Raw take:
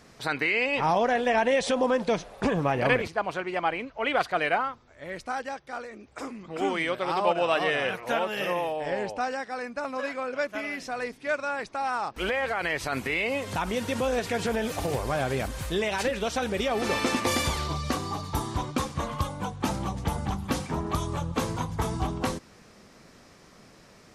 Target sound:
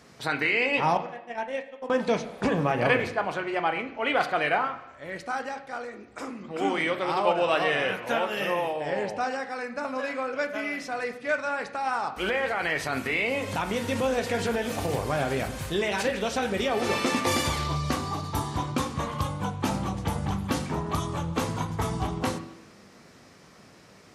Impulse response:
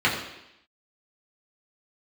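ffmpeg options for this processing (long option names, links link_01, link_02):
-filter_complex "[0:a]highpass=67,asettb=1/sr,asplit=3[link_01][link_02][link_03];[link_01]atrim=end=0.974[link_04];[link_02]atrim=start=0.97:end=1.9,asetpts=PTS-STARTPTS,afade=type=in:duration=0.004:curve=qsin,afade=type=out:start_time=0.926:duration=0.004:curve=qsin,agate=range=-46dB:threshold=-20dB:ratio=16:detection=peak[link_05];[link_03]atrim=start=1.896[link_06];[link_04][link_05]acrossfade=duration=0.004:curve1=hsin:curve2=qsin[link_07];[link_07][link_06]acrossfade=duration=0.004:curve1=qsin:curve2=hsin,asplit=2[link_08][link_09];[1:a]atrim=start_sample=2205,adelay=15[link_10];[link_09][link_10]afir=irnorm=-1:irlink=0,volume=-23dB[link_11];[link_08][link_11]amix=inputs=2:normalize=0"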